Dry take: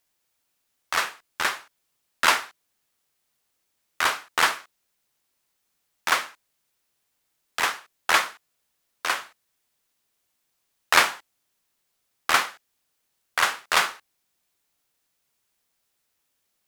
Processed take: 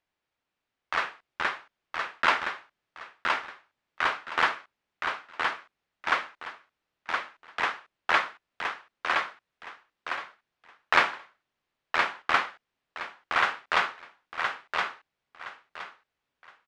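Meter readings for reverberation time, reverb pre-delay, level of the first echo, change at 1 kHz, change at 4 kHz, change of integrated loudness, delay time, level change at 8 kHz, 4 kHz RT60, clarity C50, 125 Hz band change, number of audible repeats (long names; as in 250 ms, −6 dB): no reverb audible, no reverb audible, −4.0 dB, −1.0 dB, −6.5 dB, −5.0 dB, 1,018 ms, −18.0 dB, no reverb audible, no reverb audible, can't be measured, 3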